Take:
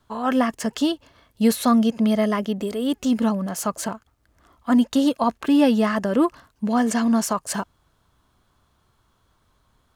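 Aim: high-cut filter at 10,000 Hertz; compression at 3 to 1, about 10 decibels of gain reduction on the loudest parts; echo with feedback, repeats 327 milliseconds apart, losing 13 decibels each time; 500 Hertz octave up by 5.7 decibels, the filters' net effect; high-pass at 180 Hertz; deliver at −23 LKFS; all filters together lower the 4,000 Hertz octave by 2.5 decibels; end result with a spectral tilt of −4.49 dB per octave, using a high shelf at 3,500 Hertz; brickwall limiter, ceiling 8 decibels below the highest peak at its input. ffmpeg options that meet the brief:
ffmpeg -i in.wav -af "highpass=180,lowpass=10000,equalizer=frequency=500:width_type=o:gain=7,highshelf=frequency=3500:gain=5,equalizer=frequency=4000:width_type=o:gain=-7,acompressor=threshold=-23dB:ratio=3,alimiter=limit=-19dB:level=0:latency=1,aecho=1:1:327|654|981:0.224|0.0493|0.0108,volume=5.5dB" out.wav

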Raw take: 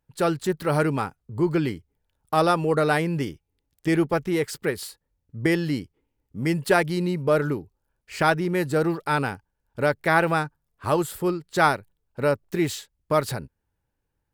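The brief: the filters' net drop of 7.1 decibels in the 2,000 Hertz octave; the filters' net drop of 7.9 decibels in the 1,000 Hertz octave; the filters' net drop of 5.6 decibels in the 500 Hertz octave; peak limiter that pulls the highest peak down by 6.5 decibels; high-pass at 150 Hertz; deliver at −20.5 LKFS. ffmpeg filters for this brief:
ffmpeg -i in.wav -af "highpass=150,equalizer=frequency=500:width_type=o:gain=-5,equalizer=frequency=1000:width_type=o:gain=-7.5,equalizer=frequency=2000:width_type=o:gain=-6,volume=9.5dB,alimiter=limit=-7dB:level=0:latency=1" out.wav

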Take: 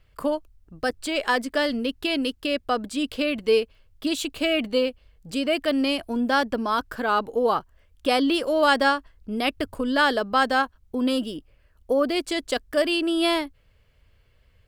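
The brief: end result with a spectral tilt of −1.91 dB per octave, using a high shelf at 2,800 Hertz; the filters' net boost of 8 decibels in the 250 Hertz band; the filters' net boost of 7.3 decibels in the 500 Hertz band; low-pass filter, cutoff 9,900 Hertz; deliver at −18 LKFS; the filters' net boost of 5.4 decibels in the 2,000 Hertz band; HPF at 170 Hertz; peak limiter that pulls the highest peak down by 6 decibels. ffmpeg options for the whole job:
ffmpeg -i in.wav -af "highpass=170,lowpass=9900,equalizer=frequency=250:width_type=o:gain=8,equalizer=frequency=500:width_type=o:gain=6.5,equalizer=frequency=2000:width_type=o:gain=8,highshelf=frequency=2800:gain=-3,volume=1.5dB,alimiter=limit=-7dB:level=0:latency=1" out.wav

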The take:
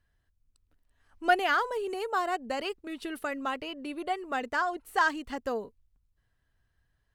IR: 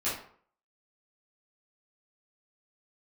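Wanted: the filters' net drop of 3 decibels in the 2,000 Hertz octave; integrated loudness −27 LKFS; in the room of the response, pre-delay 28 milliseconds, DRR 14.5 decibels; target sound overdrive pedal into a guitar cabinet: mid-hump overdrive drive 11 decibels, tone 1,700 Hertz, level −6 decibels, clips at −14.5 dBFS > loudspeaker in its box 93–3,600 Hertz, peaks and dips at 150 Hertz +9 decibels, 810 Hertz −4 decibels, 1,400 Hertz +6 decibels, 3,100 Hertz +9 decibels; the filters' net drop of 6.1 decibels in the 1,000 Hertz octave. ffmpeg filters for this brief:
-filter_complex "[0:a]equalizer=frequency=1000:width_type=o:gain=-7.5,equalizer=frequency=2000:width_type=o:gain=-6,asplit=2[link_01][link_02];[1:a]atrim=start_sample=2205,adelay=28[link_03];[link_02][link_03]afir=irnorm=-1:irlink=0,volume=-22dB[link_04];[link_01][link_04]amix=inputs=2:normalize=0,asplit=2[link_05][link_06];[link_06]highpass=frequency=720:poles=1,volume=11dB,asoftclip=type=tanh:threshold=-14.5dB[link_07];[link_05][link_07]amix=inputs=2:normalize=0,lowpass=frequency=1700:poles=1,volume=-6dB,highpass=93,equalizer=frequency=150:width_type=q:width=4:gain=9,equalizer=frequency=810:width_type=q:width=4:gain=-4,equalizer=frequency=1400:width_type=q:width=4:gain=6,equalizer=frequency=3100:width_type=q:width=4:gain=9,lowpass=frequency=3600:width=0.5412,lowpass=frequency=3600:width=1.3066,volume=5dB"

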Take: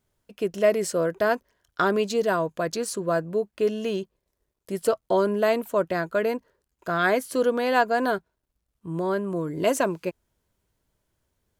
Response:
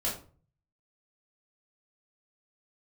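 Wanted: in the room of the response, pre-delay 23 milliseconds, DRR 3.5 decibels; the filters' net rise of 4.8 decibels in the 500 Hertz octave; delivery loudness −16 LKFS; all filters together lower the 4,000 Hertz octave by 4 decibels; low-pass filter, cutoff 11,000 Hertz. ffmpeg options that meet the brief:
-filter_complex "[0:a]lowpass=11000,equalizer=frequency=500:width_type=o:gain=6,equalizer=frequency=4000:width_type=o:gain=-5.5,asplit=2[link_01][link_02];[1:a]atrim=start_sample=2205,adelay=23[link_03];[link_02][link_03]afir=irnorm=-1:irlink=0,volume=-9dB[link_04];[link_01][link_04]amix=inputs=2:normalize=0,volume=3dB"

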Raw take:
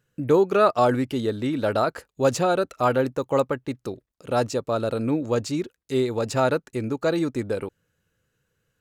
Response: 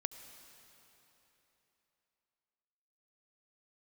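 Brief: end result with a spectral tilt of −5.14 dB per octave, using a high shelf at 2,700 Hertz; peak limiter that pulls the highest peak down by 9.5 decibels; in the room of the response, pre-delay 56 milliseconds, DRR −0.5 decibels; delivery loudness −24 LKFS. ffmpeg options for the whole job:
-filter_complex "[0:a]highshelf=frequency=2700:gain=7,alimiter=limit=-15.5dB:level=0:latency=1,asplit=2[link_01][link_02];[1:a]atrim=start_sample=2205,adelay=56[link_03];[link_02][link_03]afir=irnorm=-1:irlink=0,volume=1.5dB[link_04];[link_01][link_04]amix=inputs=2:normalize=0,volume=-0.5dB"

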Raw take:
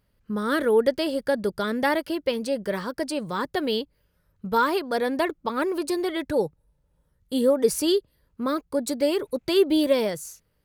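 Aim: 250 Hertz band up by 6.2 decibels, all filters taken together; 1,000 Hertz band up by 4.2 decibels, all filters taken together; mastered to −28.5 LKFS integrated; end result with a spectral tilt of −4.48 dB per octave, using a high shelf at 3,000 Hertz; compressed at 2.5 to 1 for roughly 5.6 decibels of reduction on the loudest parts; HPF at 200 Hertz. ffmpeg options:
ffmpeg -i in.wav -af "highpass=200,equalizer=frequency=250:width_type=o:gain=9,equalizer=frequency=1000:width_type=o:gain=5.5,highshelf=frequency=3000:gain=-7.5,acompressor=threshold=-20dB:ratio=2.5,volume=-4dB" out.wav

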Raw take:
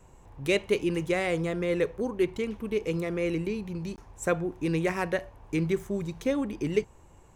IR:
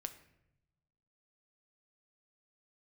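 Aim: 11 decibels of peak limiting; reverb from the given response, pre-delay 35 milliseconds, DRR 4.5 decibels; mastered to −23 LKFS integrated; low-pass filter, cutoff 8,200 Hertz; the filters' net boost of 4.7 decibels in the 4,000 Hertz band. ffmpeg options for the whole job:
-filter_complex "[0:a]lowpass=8200,equalizer=frequency=4000:width_type=o:gain=6.5,alimiter=limit=-22.5dB:level=0:latency=1,asplit=2[link_01][link_02];[1:a]atrim=start_sample=2205,adelay=35[link_03];[link_02][link_03]afir=irnorm=-1:irlink=0,volume=-1.5dB[link_04];[link_01][link_04]amix=inputs=2:normalize=0,volume=8dB"

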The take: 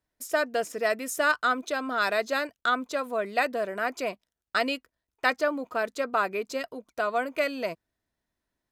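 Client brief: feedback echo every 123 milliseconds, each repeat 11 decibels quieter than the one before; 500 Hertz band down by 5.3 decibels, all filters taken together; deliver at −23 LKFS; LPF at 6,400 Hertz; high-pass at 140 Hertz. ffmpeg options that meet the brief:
ffmpeg -i in.wav -af "highpass=140,lowpass=6400,equalizer=frequency=500:width_type=o:gain=-7,aecho=1:1:123|246|369:0.282|0.0789|0.0221,volume=7dB" out.wav

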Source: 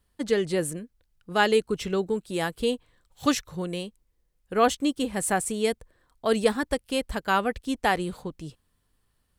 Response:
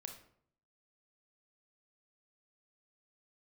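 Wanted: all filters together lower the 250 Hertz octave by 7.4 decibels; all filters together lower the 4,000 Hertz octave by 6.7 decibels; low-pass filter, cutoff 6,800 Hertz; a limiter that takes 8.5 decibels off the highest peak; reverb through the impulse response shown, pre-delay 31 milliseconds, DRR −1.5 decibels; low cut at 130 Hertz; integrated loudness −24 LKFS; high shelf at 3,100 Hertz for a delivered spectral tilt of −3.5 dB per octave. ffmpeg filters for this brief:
-filter_complex "[0:a]highpass=130,lowpass=6800,equalizer=frequency=250:width_type=o:gain=-9,highshelf=frequency=3100:gain=-7.5,equalizer=frequency=4000:width_type=o:gain=-3.5,alimiter=limit=-18dB:level=0:latency=1,asplit=2[link_01][link_02];[1:a]atrim=start_sample=2205,adelay=31[link_03];[link_02][link_03]afir=irnorm=-1:irlink=0,volume=6dB[link_04];[link_01][link_04]amix=inputs=2:normalize=0,volume=4dB"

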